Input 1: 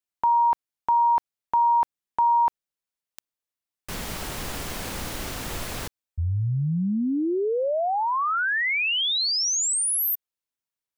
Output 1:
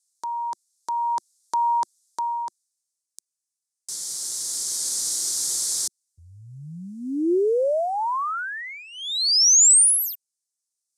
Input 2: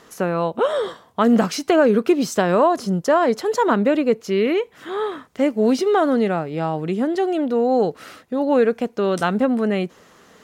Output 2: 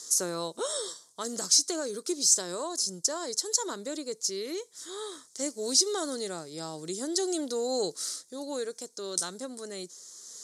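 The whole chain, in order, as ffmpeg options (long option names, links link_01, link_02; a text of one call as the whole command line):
ffmpeg -i in.wav -af "aexciter=amount=15.9:drive=9.6:freq=4400,dynaudnorm=framelen=340:gausssize=7:maxgain=16dB,highpass=160,equalizer=frequency=220:width_type=q:width=4:gain=-9,equalizer=frequency=350:width_type=q:width=4:gain=4,equalizer=frequency=750:width_type=q:width=4:gain=-5,lowpass=frequency=9300:width=0.5412,lowpass=frequency=9300:width=1.3066,volume=-8dB" out.wav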